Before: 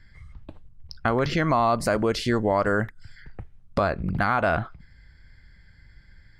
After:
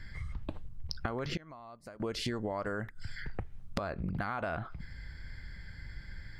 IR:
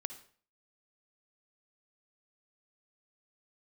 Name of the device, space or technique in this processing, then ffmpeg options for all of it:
serial compression, peaks first: -filter_complex "[0:a]acompressor=threshold=-32dB:ratio=6,acompressor=threshold=-41dB:ratio=2.5,asettb=1/sr,asplit=3[link_01][link_02][link_03];[link_01]atrim=end=1.374[link_04];[link_02]atrim=start=1.37:end=2,asetpts=PTS-STARTPTS,afade=type=in:duration=0.004:curve=qsin,afade=type=out:start_time=0.626:duration=0.004:curve=qsin,agate=range=-33dB:threshold=-30dB:ratio=3:detection=peak[link_05];[link_03]atrim=start=1.996[link_06];[link_04][link_05]acrossfade=duration=0.004:curve1=hsin:curve2=qsin[link_07];[link_07][link_06]acrossfade=duration=0.004:curve1=qsin:curve2=hsin,volume=6.5dB"

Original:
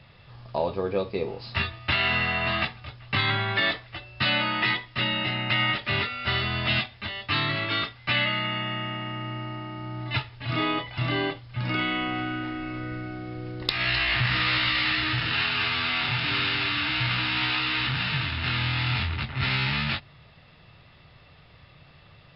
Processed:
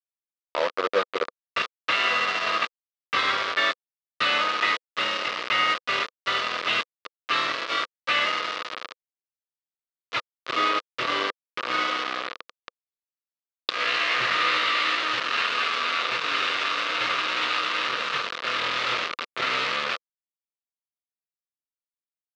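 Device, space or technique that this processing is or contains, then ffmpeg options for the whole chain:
hand-held game console: -af "acrusher=bits=3:mix=0:aa=0.000001,highpass=410,equalizer=frequency=500:width_type=q:width=4:gain=6,equalizer=frequency=820:width_type=q:width=4:gain=-7,equalizer=frequency=1200:width_type=q:width=4:gain=9,lowpass=frequency=4400:width=0.5412,lowpass=frequency=4400:width=1.3066"

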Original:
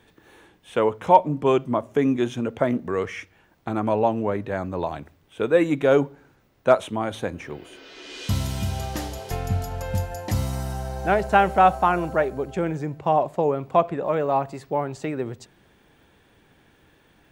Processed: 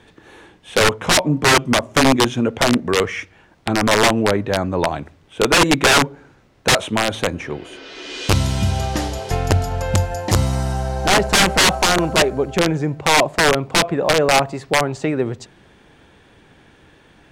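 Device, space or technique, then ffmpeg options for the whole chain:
overflowing digital effects unit: -af "aeval=exprs='(mod(5.62*val(0)+1,2)-1)/5.62':channel_layout=same,lowpass=8900,volume=8dB"

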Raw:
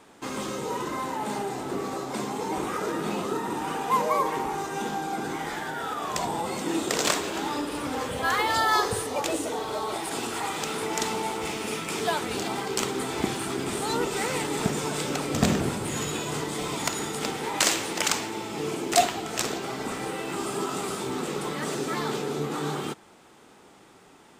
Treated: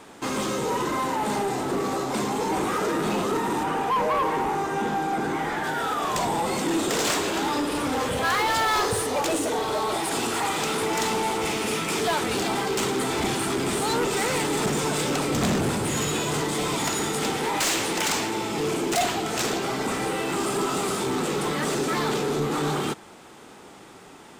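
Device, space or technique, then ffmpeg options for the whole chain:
saturation between pre-emphasis and de-emphasis: -filter_complex "[0:a]highshelf=frequency=12000:gain=8.5,asoftclip=type=tanh:threshold=-26.5dB,highshelf=frequency=12000:gain=-8.5,asettb=1/sr,asplit=3[link_01][link_02][link_03];[link_01]atrim=end=3.634[link_04];[link_02]atrim=start=3.63:end=5.64,asetpts=PTS-STARTPTS,afade=type=in:duration=0.004:curve=qsin,afade=type=out:start_time=2.006:duration=0.004:curve=qsin,acrossover=split=2600[link_05][link_06];[link_06]acompressor=threshold=-50dB:ratio=4:attack=1:release=60[link_07];[link_05][link_07]amix=inputs=2:normalize=0[link_08];[link_03]atrim=start=5.636[link_09];[link_04][link_08]acrossfade=duration=0.004:curve1=hsin:curve2=qsin[link_10];[link_10][link_09]acrossfade=duration=0.004:curve1=qsin:curve2=hsin,volume=7dB"

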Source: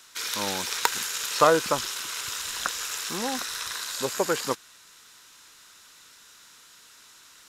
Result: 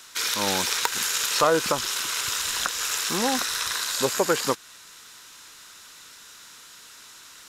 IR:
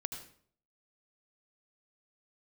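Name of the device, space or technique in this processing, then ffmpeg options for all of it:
clipper into limiter: -af "asoftclip=type=hard:threshold=-7.5dB,alimiter=limit=-15dB:level=0:latency=1:release=208,volume=5.5dB"

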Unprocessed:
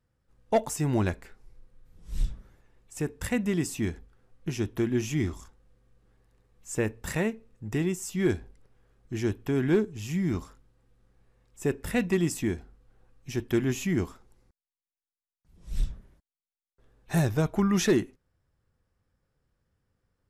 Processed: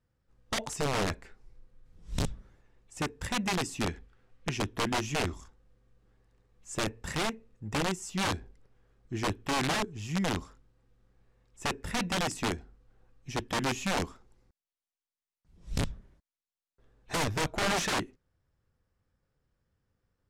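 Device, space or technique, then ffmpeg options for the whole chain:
overflowing digital effects unit: -filter_complex "[0:a]aeval=exprs='(mod(11.9*val(0)+1,2)-1)/11.9':channel_layout=same,lowpass=8100,asettb=1/sr,asplit=3[link_01][link_02][link_03];[link_01]atrim=end=3.874[link_04];[link_02]atrim=start=3.87:end=4.58,asetpts=PTS-STARTPTS,afade=type=in:duration=0.004:curve=qsin,afade=type=out:start_time=0.706:duration=0.004:curve=qsin,equalizer=frequency=2500:width=0.72:gain=6[link_05];[link_03]atrim=start=4.576[link_06];[link_04][link_05]acrossfade=duration=0.004:curve1=hsin:curve2=qsin[link_07];[link_07][link_06]acrossfade=duration=0.004:curve1=qsin:curve2=hsin,volume=-2dB"

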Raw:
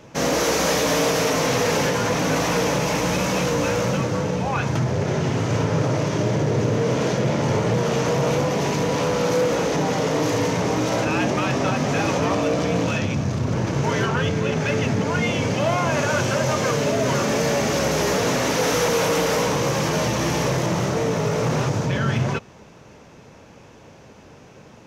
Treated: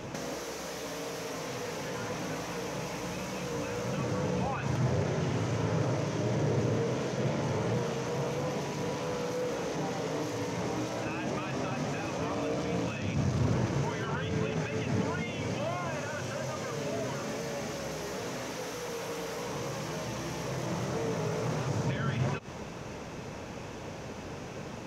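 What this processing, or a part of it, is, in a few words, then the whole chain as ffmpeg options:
de-esser from a sidechain: -filter_complex "[0:a]asplit=2[link_01][link_02];[link_02]highpass=frequency=6300:poles=1,apad=whole_len=1096680[link_03];[link_01][link_03]sidechaincompress=threshold=-51dB:ratio=10:attack=3.8:release=88,volume=5dB"

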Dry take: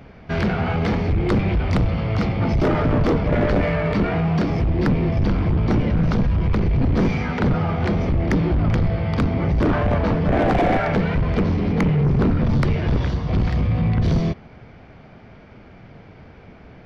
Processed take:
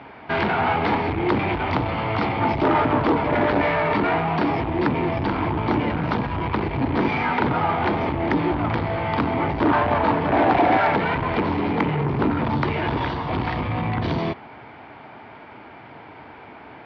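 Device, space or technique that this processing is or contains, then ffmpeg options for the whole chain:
overdrive pedal into a guitar cabinet: -filter_complex "[0:a]asplit=2[link_01][link_02];[link_02]highpass=frequency=720:poles=1,volume=12dB,asoftclip=type=tanh:threshold=-13.5dB[link_03];[link_01][link_03]amix=inputs=2:normalize=0,lowpass=frequency=3900:poles=1,volume=-6dB,highpass=92,equalizer=frequency=180:width_type=q:width=4:gain=-7,equalizer=frequency=300:width_type=q:width=4:gain=5,equalizer=frequency=520:width_type=q:width=4:gain=-4,equalizer=frequency=910:width_type=q:width=4:gain=9,lowpass=frequency=4200:width=0.5412,lowpass=frequency=4200:width=1.3066"

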